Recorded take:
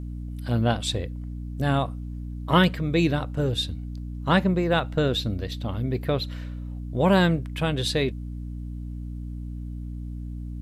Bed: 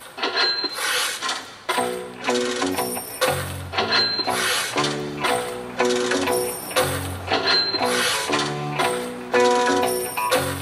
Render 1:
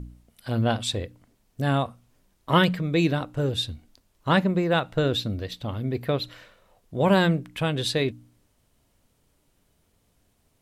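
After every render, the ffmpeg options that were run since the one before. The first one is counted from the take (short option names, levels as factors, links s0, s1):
-af "bandreject=f=60:t=h:w=4,bandreject=f=120:t=h:w=4,bandreject=f=180:t=h:w=4,bandreject=f=240:t=h:w=4,bandreject=f=300:t=h:w=4"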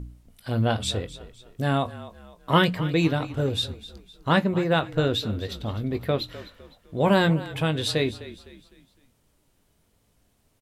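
-filter_complex "[0:a]asplit=2[s0][s1];[s1]adelay=19,volume=0.266[s2];[s0][s2]amix=inputs=2:normalize=0,asplit=5[s3][s4][s5][s6][s7];[s4]adelay=254,afreqshift=-35,volume=0.158[s8];[s5]adelay=508,afreqshift=-70,volume=0.0631[s9];[s6]adelay=762,afreqshift=-105,volume=0.0254[s10];[s7]adelay=1016,afreqshift=-140,volume=0.0101[s11];[s3][s8][s9][s10][s11]amix=inputs=5:normalize=0"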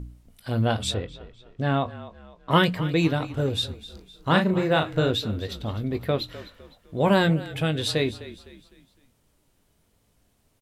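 -filter_complex "[0:a]asettb=1/sr,asplit=3[s0][s1][s2];[s0]atrim=end=0.944[s3];[s1]atrim=start=0.94:end=2.51,asetpts=PTS-STARTPTS,afade=t=in:d=0.004:c=qsin,afade=t=out:st=1.566:d=0.004:c=qsin,lowpass=3800[s4];[s2]atrim=start=2.506[s5];[s3][s4]acrossfade=d=0.004:c1=hsin:c2=qsin[s6];[s6][s5]acrossfade=d=0.004:c1=qsin:c2=hsin,asettb=1/sr,asplit=3[s7][s8][s9];[s7]atrim=end=3.864[s10];[s8]atrim=start=3.86:end=5.11,asetpts=PTS-STARTPTS,afade=t=in:d=0.004:c=qsin,afade=t=out:st=1.246:d=0.004:c=qsin,asplit=2[s11][s12];[s12]adelay=38,volume=0.531[s13];[s11][s13]amix=inputs=2:normalize=0,atrim=end_sample=55125[s14];[s9]atrim=start=5.106[s15];[s10][s14]acrossfade=d=0.004:c1=hsin:c2=qsin[s16];[s16][s15]acrossfade=d=0.004:c1=qsin:c2=hsin,asettb=1/sr,asplit=3[s17][s18][s19];[s17]atrim=end=7.234[s20];[s18]atrim=start=7.23:end=7.79,asetpts=PTS-STARTPTS,afade=t=in:d=0.004:c=qsin,afade=t=out:st=0.556:d=0.004:c=qsin,equalizer=f=1000:w=5.9:g=-14.5[s21];[s19]atrim=start=7.786[s22];[s20][s21]acrossfade=d=0.004:c1=hsin:c2=qsin[s23];[s23][s22]acrossfade=d=0.004:c1=qsin:c2=hsin"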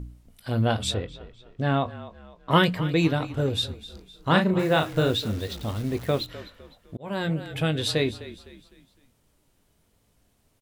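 -filter_complex "[0:a]asettb=1/sr,asplit=3[s0][s1][s2];[s0]atrim=end=4.594[s3];[s1]atrim=start=4.59:end=6.27,asetpts=PTS-STARTPTS,afade=t=in:d=0.004:c=qsin,afade=t=out:st=1.676:d=0.004:c=qsin,acrusher=bits=8:dc=4:mix=0:aa=0.000001[s4];[s2]atrim=start=6.266[s5];[s3][s4]acrossfade=d=0.004:c1=hsin:c2=qsin[s6];[s6][s5]acrossfade=d=0.004:c1=qsin:c2=hsin,asplit=2[s7][s8];[s7]atrim=end=6.97,asetpts=PTS-STARTPTS,afade=t=out:st=6.966:d=0.004:c=hsin[s9];[s8]atrim=start=6.97,asetpts=PTS-STARTPTS,afade=t=in:d=0.61[s10];[s9][s10]concat=n=2:v=0:a=1"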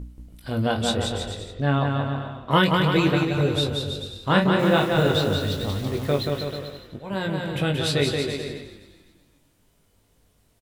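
-filter_complex "[0:a]asplit=2[s0][s1];[s1]adelay=21,volume=0.447[s2];[s0][s2]amix=inputs=2:normalize=0,aecho=1:1:180|324|439.2|531.4|605.1:0.631|0.398|0.251|0.158|0.1"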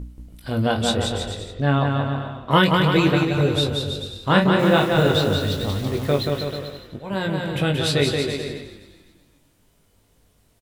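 -af "volume=1.33"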